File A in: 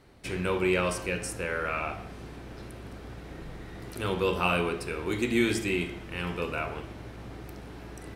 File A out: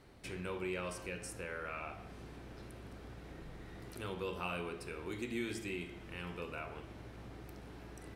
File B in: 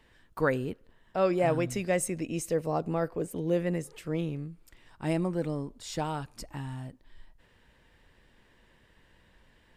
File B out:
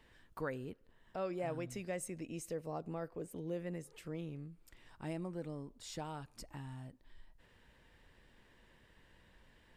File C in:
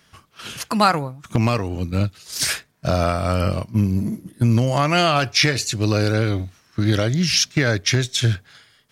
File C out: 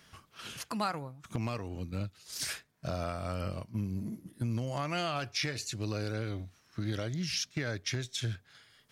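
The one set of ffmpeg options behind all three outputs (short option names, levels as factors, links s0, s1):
-af "acompressor=threshold=0.00251:ratio=1.5,volume=0.708"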